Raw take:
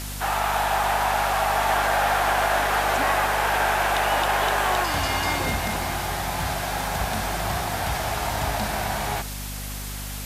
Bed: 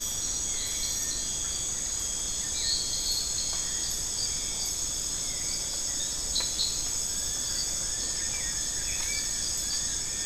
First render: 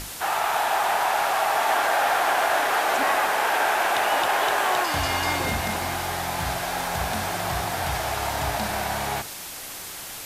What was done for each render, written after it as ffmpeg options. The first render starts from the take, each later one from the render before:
-af "bandreject=f=50:t=h:w=6,bandreject=f=100:t=h:w=6,bandreject=f=150:t=h:w=6,bandreject=f=200:t=h:w=6,bandreject=f=250:t=h:w=6"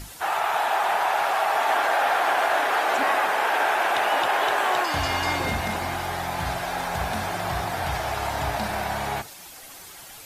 -af "afftdn=nr=9:nf=-37"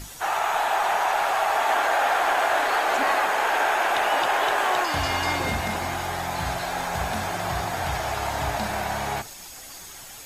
-filter_complex "[1:a]volume=-15.5dB[a];[0:a][a]amix=inputs=2:normalize=0"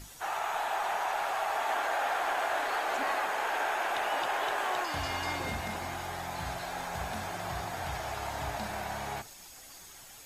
-af "volume=-9dB"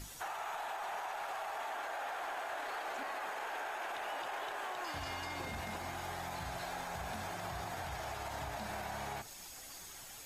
-af "alimiter=level_in=4dB:limit=-24dB:level=0:latency=1,volume=-4dB,acompressor=threshold=-41dB:ratio=2"

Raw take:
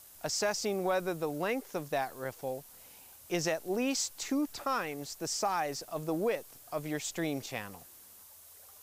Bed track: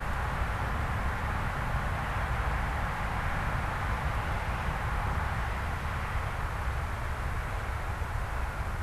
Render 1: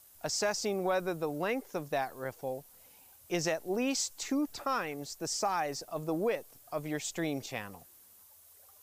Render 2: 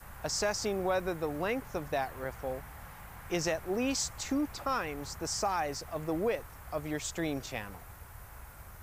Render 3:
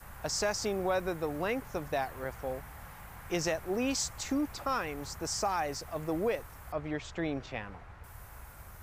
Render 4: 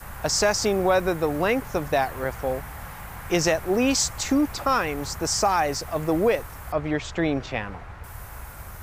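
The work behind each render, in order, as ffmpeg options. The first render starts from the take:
-af "afftdn=nr=6:nf=-55"
-filter_complex "[1:a]volume=-16.5dB[a];[0:a][a]amix=inputs=2:normalize=0"
-filter_complex "[0:a]asettb=1/sr,asplit=3[a][b][c];[a]atrim=end=6.724[d];[b]atrim=start=6.72:end=8.04,asetpts=PTS-STARTPTS,afade=t=in:d=0.004:c=qsin,afade=t=out:st=1.316:d=0.004:c=qsin,lowpass=3.3k[e];[c]atrim=start=8.036[f];[d][e]acrossfade=d=0.004:c1=hsin:c2=qsin[g];[g][f]acrossfade=d=0.004:c1=qsin:c2=hsin"
-af "volume=10dB"

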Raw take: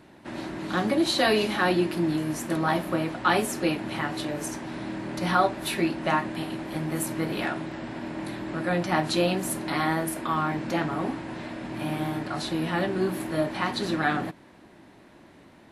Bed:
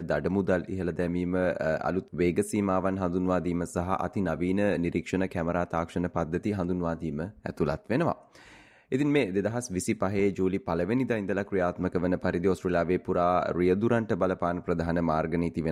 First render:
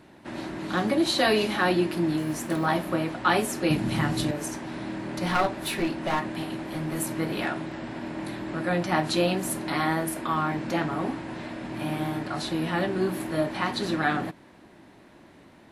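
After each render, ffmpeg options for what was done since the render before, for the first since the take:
-filter_complex "[0:a]asettb=1/sr,asplit=3[a][b][c];[a]atrim=end=2.194[d];[b]atrim=start=2.19:end=2.66,asetpts=PTS-STARTPTS,afade=t=in:d=0.004:c=qsin,afade=t=out:st=0.466:d=0.004:c=qsin,acrusher=bits=8:mode=log:mix=0:aa=0.000001[e];[c]atrim=start=2.656[f];[d][e]acrossfade=d=0.004:c1=hsin:c2=qsin[g];[g][f]acrossfade=d=0.004:c1=qsin:c2=hsin,asettb=1/sr,asplit=3[h][i][j];[h]atrim=end=3.704[k];[i]atrim=start=3.7:end=4.31,asetpts=PTS-STARTPTS,afade=t=in:d=0.004:c=qsin,afade=t=out:st=0.606:d=0.004:c=qsin,bass=f=250:g=12,treble=f=4k:g=7[l];[j]atrim=start=4.306[m];[k][l]acrossfade=d=0.004:c1=hsin:c2=qsin[n];[n][m]acrossfade=d=0.004:c1=qsin:c2=hsin,asettb=1/sr,asplit=3[o][p][q];[o]atrim=end=5.254[r];[p]atrim=start=5.25:end=6.99,asetpts=PTS-STARTPTS,afade=t=in:d=0.004:c=qsin,afade=t=out:st=1.736:d=0.004:c=qsin,aeval=exprs='clip(val(0),-1,0.0531)':c=same[s];[q]atrim=start=6.986[t];[r][s]acrossfade=d=0.004:c1=hsin:c2=qsin[u];[u][t]acrossfade=d=0.004:c1=qsin:c2=hsin"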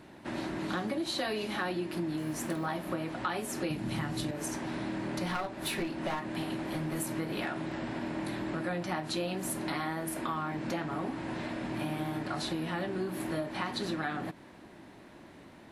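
-af "acompressor=threshold=-31dB:ratio=6"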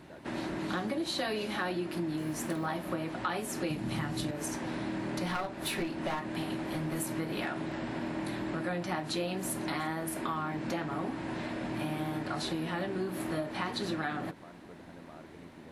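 -filter_complex "[1:a]volume=-25dB[a];[0:a][a]amix=inputs=2:normalize=0"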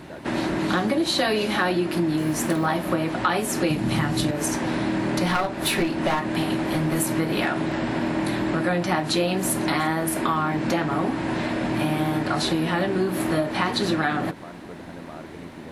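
-af "volume=11dB"

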